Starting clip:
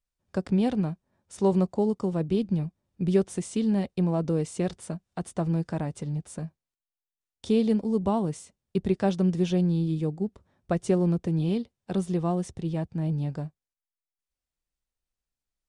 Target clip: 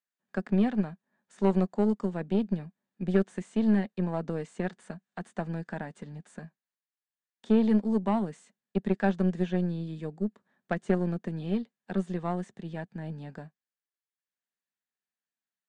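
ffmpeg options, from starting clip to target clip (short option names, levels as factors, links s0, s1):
-filter_complex "[0:a]highpass=f=190:w=0.5412,highpass=f=190:w=1.3066,equalizer=f=210:t=q:w=4:g=5,equalizer=f=320:t=q:w=4:g=-8,equalizer=f=530:t=q:w=4:g=-4,equalizer=f=1700:t=q:w=4:g=10,equalizer=f=5400:t=q:w=4:g=-7,lowpass=f=8100:w=0.5412,lowpass=f=8100:w=1.3066,acrossover=split=2600[s0][s1];[s1]acompressor=threshold=0.00316:ratio=4:attack=1:release=60[s2];[s0][s2]amix=inputs=2:normalize=0,aeval=exprs='0.282*(cos(1*acos(clip(val(0)/0.282,-1,1)))-cos(1*PI/2))+0.0251*(cos(4*acos(clip(val(0)/0.282,-1,1)))-cos(4*PI/2))+0.0126*(cos(7*acos(clip(val(0)/0.282,-1,1)))-cos(7*PI/2))':c=same,volume=0.891"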